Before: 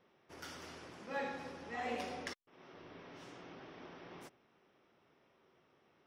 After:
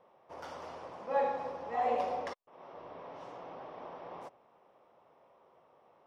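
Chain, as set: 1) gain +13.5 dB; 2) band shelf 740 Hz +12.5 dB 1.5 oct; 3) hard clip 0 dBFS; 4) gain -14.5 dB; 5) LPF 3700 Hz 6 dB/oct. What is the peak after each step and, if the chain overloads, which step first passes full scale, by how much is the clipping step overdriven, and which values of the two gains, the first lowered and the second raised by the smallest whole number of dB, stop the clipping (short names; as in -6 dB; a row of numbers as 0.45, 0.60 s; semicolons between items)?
-13.0, -4.5, -4.5, -19.0, -19.0 dBFS; no overload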